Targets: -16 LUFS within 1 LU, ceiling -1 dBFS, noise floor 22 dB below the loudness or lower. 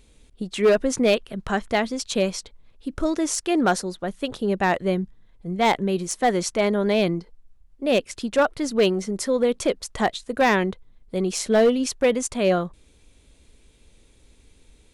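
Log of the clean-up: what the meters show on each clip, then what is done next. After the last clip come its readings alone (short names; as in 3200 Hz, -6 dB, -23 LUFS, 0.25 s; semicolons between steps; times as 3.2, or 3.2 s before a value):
clipped 0.7%; flat tops at -12.0 dBFS; loudness -23.0 LUFS; peak -12.0 dBFS; loudness target -16.0 LUFS
-> clip repair -12 dBFS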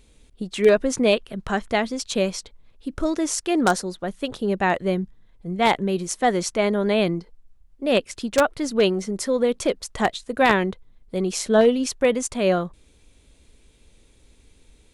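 clipped 0.0%; loudness -22.5 LUFS; peak -3.0 dBFS; loudness target -16.0 LUFS
-> gain +6.5 dB; limiter -1 dBFS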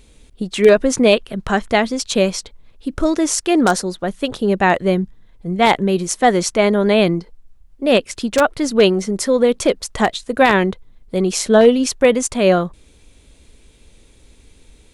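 loudness -16.5 LUFS; peak -1.0 dBFS; noise floor -50 dBFS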